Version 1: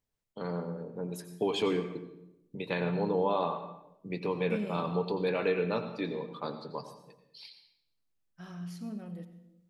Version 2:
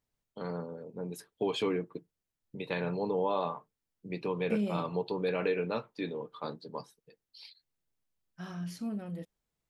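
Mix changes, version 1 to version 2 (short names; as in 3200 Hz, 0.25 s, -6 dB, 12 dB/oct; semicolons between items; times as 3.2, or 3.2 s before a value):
second voice +5.5 dB; reverb: off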